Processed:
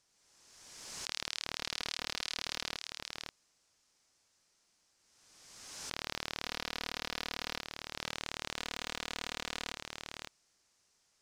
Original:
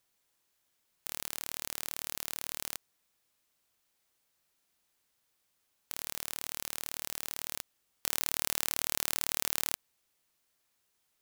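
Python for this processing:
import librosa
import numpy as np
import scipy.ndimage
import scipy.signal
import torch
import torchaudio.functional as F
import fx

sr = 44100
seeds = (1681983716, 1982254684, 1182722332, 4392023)

y = fx.band_shelf(x, sr, hz=7900.0, db=12.0, octaves=1.7)
y = (np.mod(10.0 ** (15.5 / 20.0) * y + 1.0, 2.0) - 1.0) / 10.0 ** (15.5 / 20.0)
y = fx.air_absorb(y, sr, metres=110.0)
y = y + 10.0 ** (-5.0 / 20.0) * np.pad(y, (int(532 * sr / 1000.0), 0))[:len(y)]
y = fx.pre_swell(y, sr, db_per_s=35.0)
y = y * librosa.db_to_amplitude(3.0)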